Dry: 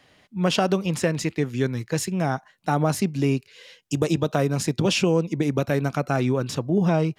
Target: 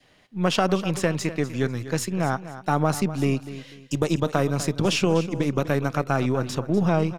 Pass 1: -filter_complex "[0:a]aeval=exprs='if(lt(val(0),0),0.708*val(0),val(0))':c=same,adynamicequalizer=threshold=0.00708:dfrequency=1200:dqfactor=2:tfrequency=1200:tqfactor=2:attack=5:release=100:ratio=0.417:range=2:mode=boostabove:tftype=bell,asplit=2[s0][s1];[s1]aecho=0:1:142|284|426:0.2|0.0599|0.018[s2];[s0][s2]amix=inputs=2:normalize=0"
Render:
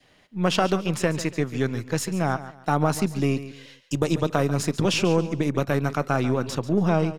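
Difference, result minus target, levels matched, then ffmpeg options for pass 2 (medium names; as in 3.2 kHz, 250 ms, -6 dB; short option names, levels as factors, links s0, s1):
echo 105 ms early
-filter_complex "[0:a]aeval=exprs='if(lt(val(0),0),0.708*val(0),val(0))':c=same,adynamicequalizer=threshold=0.00708:dfrequency=1200:dqfactor=2:tfrequency=1200:tqfactor=2:attack=5:release=100:ratio=0.417:range=2:mode=boostabove:tftype=bell,asplit=2[s0][s1];[s1]aecho=0:1:247|494|741:0.2|0.0599|0.018[s2];[s0][s2]amix=inputs=2:normalize=0"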